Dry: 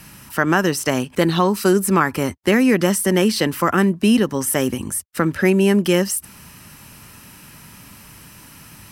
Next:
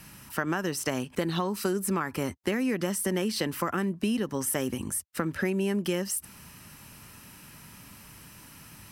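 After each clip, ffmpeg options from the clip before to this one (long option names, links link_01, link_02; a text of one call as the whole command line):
ffmpeg -i in.wav -af "acompressor=threshold=-18dB:ratio=6,volume=-6.5dB" out.wav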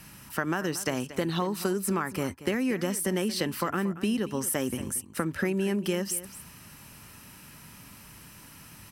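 ffmpeg -i in.wav -af "aecho=1:1:231:0.178" out.wav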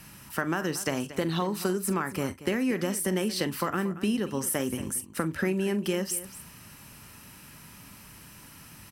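ffmpeg -i in.wav -filter_complex "[0:a]asplit=2[link_01][link_02];[link_02]adelay=43,volume=-14dB[link_03];[link_01][link_03]amix=inputs=2:normalize=0" out.wav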